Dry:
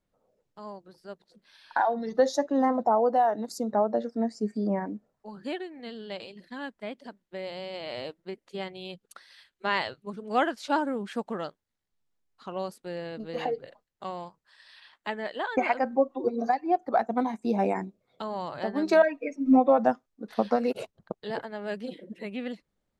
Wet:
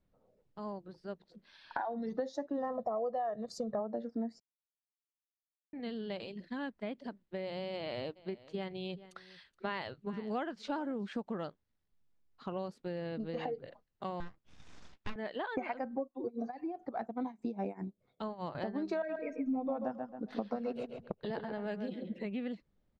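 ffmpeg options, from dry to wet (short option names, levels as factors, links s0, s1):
-filter_complex "[0:a]asplit=3[s0][s1][s2];[s0]afade=t=out:st=2.56:d=0.02[s3];[s1]aecho=1:1:1.7:0.83,afade=t=in:st=2.56:d=0.02,afade=t=out:st=3.79:d=0.02[s4];[s2]afade=t=in:st=3.79:d=0.02[s5];[s3][s4][s5]amix=inputs=3:normalize=0,asplit=3[s6][s7][s8];[s6]afade=t=out:st=8.15:d=0.02[s9];[s7]aecho=1:1:423:0.0841,afade=t=in:st=8.15:d=0.02,afade=t=out:st=11.1:d=0.02[s10];[s8]afade=t=in:st=11.1:d=0.02[s11];[s9][s10][s11]amix=inputs=3:normalize=0,asettb=1/sr,asplit=3[s12][s13][s14];[s12]atrim=end=14.204[s15];[s13]atrim=start=14.2:end=15.16,asetpts=PTS-STARTPTS,afade=t=in:d=0.004:c=qsin,afade=t=out:st=0.956:d=0.004:c=qsin,aeval=exprs='abs(val(0))':c=same[s16];[s14]atrim=start=15.156[s17];[s15][s16]acrossfade=d=0.004:c1=hsin:c2=qsin[s18];[s18][s17]acrossfade=d=0.004:c1=qsin:c2=hsin,asettb=1/sr,asplit=3[s19][s20][s21];[s19]atrim=end=16.024[s22];[s20]atrim=start=16.02:end=18.55,asetpts=PTS-STARTPTS,afade=t=in:d=0.004:c=qsin,afade=t=out:st=2.526:d=0.004:c=qsin,tremolo=f=4.9:d=0.88[s23];[s21]atrim=start=18.546[s24];[s22][s23]acrossfade=d=0.004:c1=hsin:c2=qsin[s25];[s25][s24]acrossfade=d=0.004:c1=qsin:c2=hsin,asplit=3[s26][s27][s28];[s26]afade=t=out:st=19.08:d=0.02[s29];[s27]asplit=2[s30][s31];[s31]adelay=136,lowpass=f=3300:p=1,volume=0.398,asplit=2[s32][s33];[s33]adelay=136,lowpass=f=3300:p=1,volume=0.22,asplit=2[s34][s35];[s35]adelay=136,lowpass=f=3300:p=1,volume=0.22[s36];[s30][s32][s34][s36]amix=inputs=4:normalize=0,afade=t=in:st=19.08:d=0.02,afade=t=out:st=22.18:d=0.02[s37];[s28]afade=t=in:st=22.18:d=0.02[s38];[s29][s37][s38]amix=inputs=3:normalize=0,asplit=3[s39][s40][s41];[s39]atrim=end=4.4,asetpts=PTS-STARTPTS,afade=t=out:st=4.396:d=0.004:c=hsin[s42];[s40]atrim=start=4.4:end=5.73,asetpts=PTS-STARTPTS,volume=0[s43];[s41]atrim=start=5.73,asetpts=PTS-STARTPTS,afade=t=in:d=0.004:c=hsin[s44];[s42][s43][s44]concat=n=3:v=0:a=1,lowpass=5000,lowshelf=f=330:g=8.5,acompressor=threshold=0.0224:ratio=4,volume=0.75"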